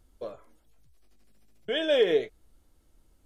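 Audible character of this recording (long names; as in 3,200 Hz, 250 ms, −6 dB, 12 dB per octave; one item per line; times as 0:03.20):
background noise floor −66 dBFS
spectral slope −1.0 dB per octave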